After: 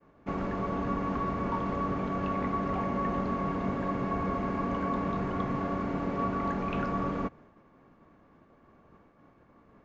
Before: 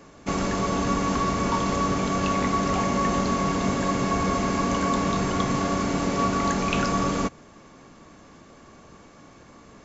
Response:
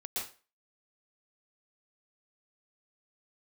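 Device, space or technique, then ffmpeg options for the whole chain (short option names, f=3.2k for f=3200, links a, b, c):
hearing-loss simulation: -af "lowpass=1.8k,agate=range=-33dB:threshold=-45dB:ratio=3:detection=peak,volume=-6.5dB"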